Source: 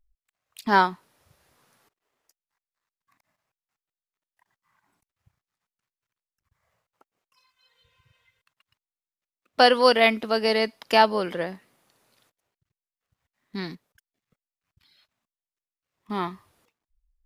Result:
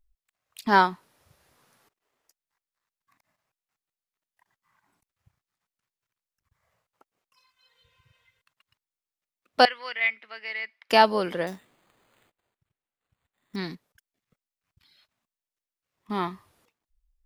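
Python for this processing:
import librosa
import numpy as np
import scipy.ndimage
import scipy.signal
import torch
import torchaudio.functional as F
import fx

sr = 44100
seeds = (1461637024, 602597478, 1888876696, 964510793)

y = fx.bandpass_q(x, sr, hz=2100.0, q=4.7, at=(9.65, 10.9))
y = fx.resample_bad(y, sr, factor=8, down='none', up='hold', at=(11.47, 13.56))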